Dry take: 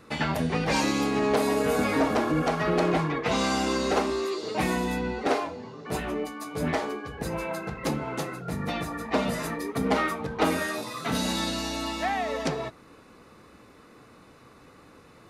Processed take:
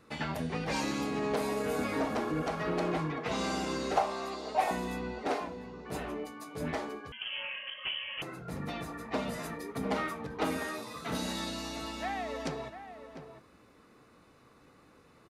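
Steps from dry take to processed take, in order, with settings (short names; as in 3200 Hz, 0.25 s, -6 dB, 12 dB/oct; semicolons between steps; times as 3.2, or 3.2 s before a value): 3.97–4.71 resonant high-pass 700 Hz, resonance Q 4.9; outdoor echo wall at 120 m, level -10 dB; 7.12–8.22 inverted band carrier 3200 Hz; gain -8 dB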